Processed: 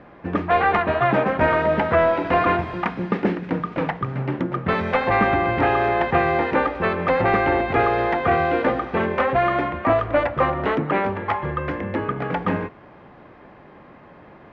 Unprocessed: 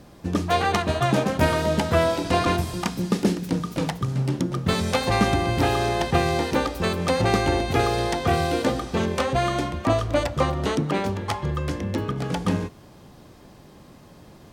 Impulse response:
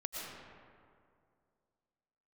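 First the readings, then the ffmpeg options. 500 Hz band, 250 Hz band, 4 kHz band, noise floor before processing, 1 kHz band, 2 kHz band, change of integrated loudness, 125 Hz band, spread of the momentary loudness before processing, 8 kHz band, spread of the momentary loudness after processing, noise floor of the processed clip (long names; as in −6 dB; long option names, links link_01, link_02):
+3.5 dB, 0.0 dB, −7.5 dB, −48 dBFS, +5.0 dB, +5.5 dB, +2.5 dB, −3.0 dB, 6 LU, below −25 dB, 7 LU, −46 dBFS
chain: -filter_complex "[0:a]asplit=2[link_01][link_02];[link_02]highpass=frequency=720:poles=1,volume=14dB,asoftclip=type=tanh:threshold=-6dB[link_03];[link_01][link_03]amix=inputs=2:normalize=0,lowpass=frequency=1100:poles=1,volume=-6dB,lowpass=frequency=2100:width_type=q:width=1.7"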